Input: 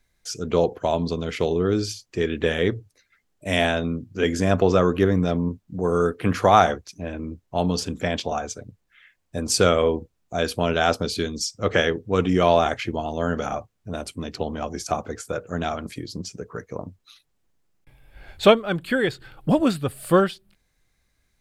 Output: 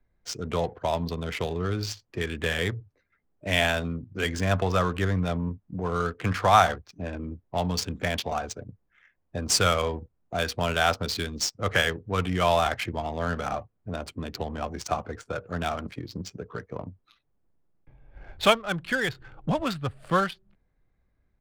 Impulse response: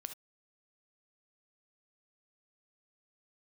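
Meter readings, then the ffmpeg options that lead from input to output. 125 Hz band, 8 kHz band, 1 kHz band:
−2.5 dB, −1.5 dB, −2.0 dB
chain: -filter_complex "[0:a]acrossover=split=160|670|4500[link_01][link_02][link_03][link_04];[link_02]acompressor=threshold=-36dB:ratio=6[link_05];[link_04]aecho=1:1:7.3:0.79[link_06];[link_01][link_05][link_03][link_06]amix=inputs=4:normalize=0,adynamicsmooth=sensitivity=6.5:basefreq=1300"

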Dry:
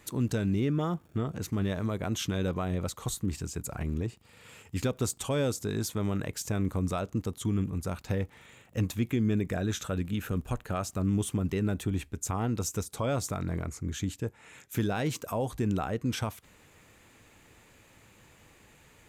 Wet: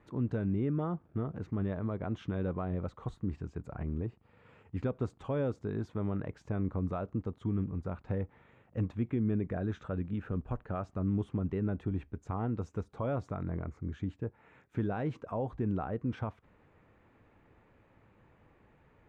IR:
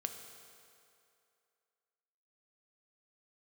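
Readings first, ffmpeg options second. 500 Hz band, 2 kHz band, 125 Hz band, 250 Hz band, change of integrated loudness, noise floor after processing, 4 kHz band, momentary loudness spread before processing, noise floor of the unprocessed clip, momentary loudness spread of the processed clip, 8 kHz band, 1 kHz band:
−3.5 dB, −9.0 dB, −3.5 dB, −3.5 dB, −4.0 dB, −66 dBFS, below −15 dB, 6 LU, −59 dBFS, 7 LU, below −30 dB, −4.5 dB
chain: -af "lowpass=1400,volume=-3.5dB"

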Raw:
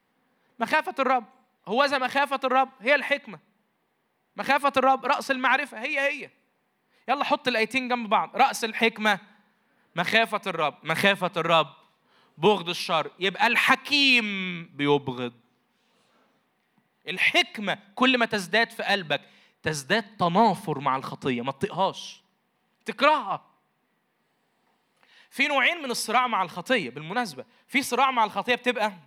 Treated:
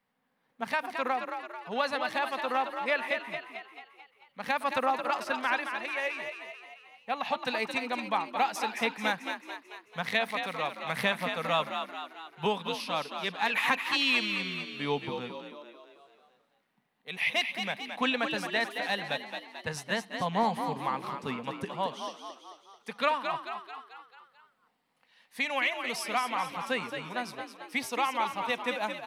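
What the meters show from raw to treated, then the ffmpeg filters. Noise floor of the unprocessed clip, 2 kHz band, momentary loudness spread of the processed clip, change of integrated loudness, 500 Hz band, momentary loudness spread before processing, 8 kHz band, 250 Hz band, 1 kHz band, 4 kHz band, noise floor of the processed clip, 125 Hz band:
−72 dBFS, −6.5 dB, 15 LU, −7.0 dB, −7.5 dB, 12 LU, −6.5 dB, −8.0 dB, −6.5 dB, −6.5 dB, −73 dBFS, −7.5 dB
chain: -filter_complex "[0:a]equalizer=frequency=340:width=6.3:gain=-14.5,asplit=2[link_01][link_02];[link_02]asplit=6[link_03][link_04][link_05][link_06][link_07][link_08];[link_03]adelay=220,afreqshift=52,volume=-7dB[link_09];[link_04]adelay=440,afreqshift=104,volume=-12.5dB[link_10];[link_05]adelay=660,afreqshift=156,volume=-18dB[link_11];[link_06]adelay=880,afreqshift=208,volume=-23.5dB[link_12];[link_07]adelay=1100,afreqshift=260,volume=-29.1dB[link_13];[link_08]adelay=1320,afreqshift=312,volume=-34.6dB[link_14];[link_09][link_10][link_11][link_12][link_13][link_14]amix=inputs=6:normalize=0[link_15];[link_01][link_15]amix=inputs=2:normalize=0,volume=-7.5dB"

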